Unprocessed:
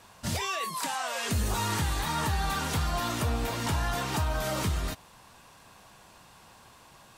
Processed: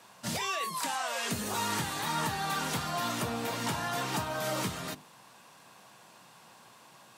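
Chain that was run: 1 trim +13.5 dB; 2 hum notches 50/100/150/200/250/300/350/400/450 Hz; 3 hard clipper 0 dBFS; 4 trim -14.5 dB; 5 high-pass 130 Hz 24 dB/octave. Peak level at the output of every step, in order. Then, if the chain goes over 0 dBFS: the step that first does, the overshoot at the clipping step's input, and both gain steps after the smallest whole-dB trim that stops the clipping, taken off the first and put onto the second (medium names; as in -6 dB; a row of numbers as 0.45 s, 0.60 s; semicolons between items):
-5.0 dBFS, -5.0 dBFS, -5.0 dBFS, -19.5 dBFS, -19.5 dBFS; nothing clips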